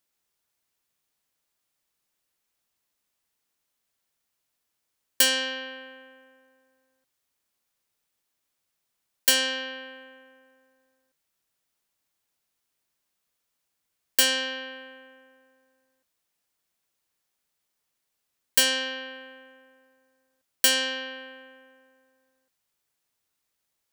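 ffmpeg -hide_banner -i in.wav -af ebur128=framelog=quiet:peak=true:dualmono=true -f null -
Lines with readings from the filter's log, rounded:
Integrated loudness:
  I:         -20.8 LUFS
  Threshold: -34.5 LUFS
Loudness range:
  LRA:         6.8 LU
  Threshold: -47.5 LUFS
  LRA low:   -31.3 LUFS
  LRA high:  -24.5 LUFS
True peak:
  Peak:       -5.8 dBFS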